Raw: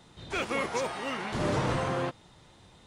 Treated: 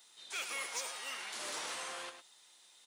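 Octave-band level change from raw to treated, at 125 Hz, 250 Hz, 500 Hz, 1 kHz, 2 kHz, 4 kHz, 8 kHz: -39.0, -26.0, -18.5, -12.5, -6.5, -1.5, +3.5 dB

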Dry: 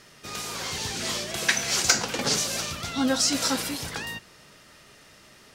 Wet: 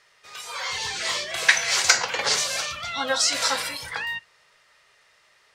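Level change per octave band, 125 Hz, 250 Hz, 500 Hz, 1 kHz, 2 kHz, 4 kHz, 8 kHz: -10.0, -14.0, +0.5, +4.0, +6.0, +3.0, +0.5 dB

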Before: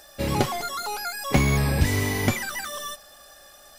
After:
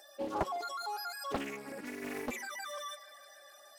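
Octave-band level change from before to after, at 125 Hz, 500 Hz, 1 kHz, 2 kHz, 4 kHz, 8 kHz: -29.5, -10.0, -8.5, -14.0, -13.0, -16.0 dB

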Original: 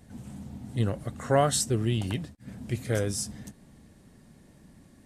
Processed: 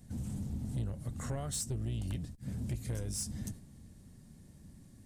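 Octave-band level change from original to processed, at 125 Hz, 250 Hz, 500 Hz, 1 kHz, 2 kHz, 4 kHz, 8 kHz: -6.0, -8.5, -18.0, -19.5, -16.0, -11.5, -7.5 dB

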